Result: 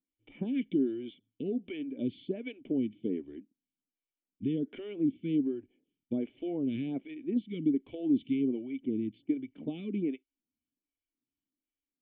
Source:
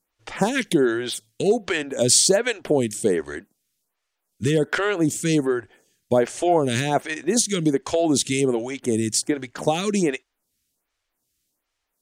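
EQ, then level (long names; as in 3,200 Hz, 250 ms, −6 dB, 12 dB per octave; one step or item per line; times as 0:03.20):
formant resonators in series i
parametric band 430 Hz +4.5 dB 2.3 octaves
−6.0 dB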